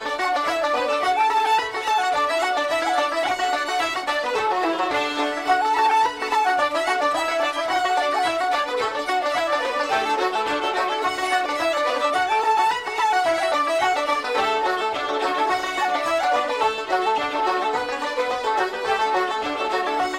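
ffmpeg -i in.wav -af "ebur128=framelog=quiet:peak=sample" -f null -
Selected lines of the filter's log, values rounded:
Integrated loudness:
  I:         -21.5 LUFS
  Threshold: -31.5 LUFS
Loudness range:
  LRA:         1.5 LU
  Threshold: -41.5 LUFS
  LRA low:   -22.2 LUFS
  LRA high:  -20.7 LUFS
Sample peak:
  Peak:       -8.7 dBFS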